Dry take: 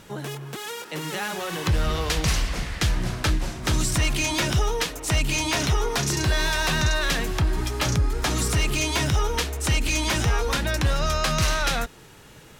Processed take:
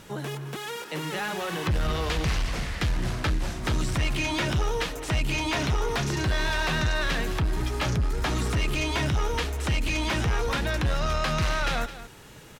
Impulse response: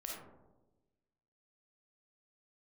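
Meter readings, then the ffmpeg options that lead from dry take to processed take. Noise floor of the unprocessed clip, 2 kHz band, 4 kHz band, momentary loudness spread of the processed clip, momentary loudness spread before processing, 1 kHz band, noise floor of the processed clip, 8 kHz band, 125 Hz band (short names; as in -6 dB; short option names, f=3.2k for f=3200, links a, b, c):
-48 dBFS, -2.5 dB, -5.0 dB, 5 LU, 7 LU, -2.0 dB, -45 dBFS, -9.5 dB, -2.5 dB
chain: -filter_complex "[0:a]acrossover=split=3900[a][b];[b]acompressor=threshold=-39dB:ratio=4:attack=1:release=60[c];[a][c]amix=inputs=2:normalize=0,aecho=1:1:214:0.158,asoftclip=type=tanh:threshold=-19.5dB"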